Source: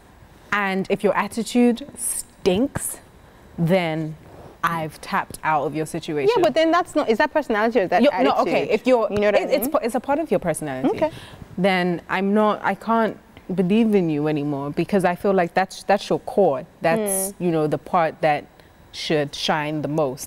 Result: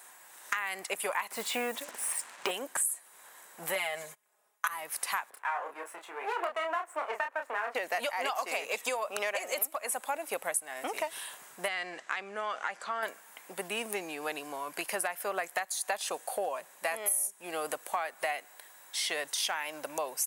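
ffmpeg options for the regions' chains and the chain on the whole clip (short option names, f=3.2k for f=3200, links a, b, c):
-filter_complex "[0:a]asettb=1/sr,asplit=3[a][b][c];[a]atrim=end=1.314[d];[b]atrim=start=1.31:end=2.51,asetpts=PTS-STARTPTS,afade=t=in:d=0.004:c=qsin,afade=t=out:st=1.196:d=0.004:c=qsin,lowpass=2.6k,acontrast=74,acrusher=bits=6:mix=0:aa=0.5[e];[c]atrim=start=2.506[f];[d][e]acrossfade=d=0.004:c1=hsin:c2=qsin[g];[g][f]acrossfade=d=0.004:c1=qsin:c2=hsin,asettb=1/sr,asplit=3[h][i][j];[h]atrim=end=3.754[k];[i]atrim=start=3.75:end=4.68,asetpts=PTS-STARTPTS,afade=t=in:d=0.004:c=qsin,afade=t=out:st=0.926:d=0.004:c=qsin,bandreject=f=4.3k:w=26,aecho=1:1:4.8:0.89,atrim=end_sample=41013,agate=range=-25dB:threshold=-32dB:ratio=16:release=100:detection=peak[l];[j]atrim=start=4.676[m];[k][l]acrossfade=d=0.004:c1=hsin:c2=qsin[n];[n][m]acrossfade=d=0.004:c1=qsin:c2=hsin,asettb=1/sr,asplit=3[o][p][q];[o]atrim=end=5.304[r];[p]atrim=start=5.3:end=7.75,asetpts=PTS-STARTPTS,afade=t=in:d=0.004:c=qsin,afade=t=out:st=2.446:d=0.004:c=qsin,aeval=exprs='if(lt(val(0),0),0.251*val(0),val(0))':c=same,acrossover=split=300 2300:gain=0.178 1 0.0891[s][t][u];[s][t][u]amix=inputs=3:normalize=0,asplit=2[v][w];[w]adelay=29,volume=-5.5dB[x];[v][x]amix=inputs=2:normalize=0,atrim=end_sample=108045[y];[q]atrim=start=7.746[z];[r][y]acrossfade=d=0.004:c1=hsin:c2=qsin[aa];[aa][z]acrossfade=d=0.004:c1=qsin:c2=hsin,asettb=1/sr,asplit=3[ab][ac][ad];[ab]atrim=end=11.684[ae];[ac]atrim=start=11.68:end=13.03,asetpts=PTS-STARTPTS,afade=t=in:d=0.004:c=qsin,afade=t=out:st=1.346:d=0.004:c=qsin,lowpass=f=6.9k:w=0.5412,lowpass=f=6.9k:w=1.3066,acompressor=threshold=-22dB:ratio=2.5:attack=3.2:release=140:knee=1:detection=peak,equalizer=f=900:t=o:w=0.22:g=-6[af];[ad]atrim=start=13.026[ag];[ae][af]acrossfade=d=0.004:c1=hsin:c2=qsin[ah];[ah][ag]acrossfade=d=0.004:c1=qsin:c2=hsin,highpass=1.1k,highshelf=f=6.1k:t=q:w=1.5:g=9,acompressor=threshold=-29dB:ratio=6"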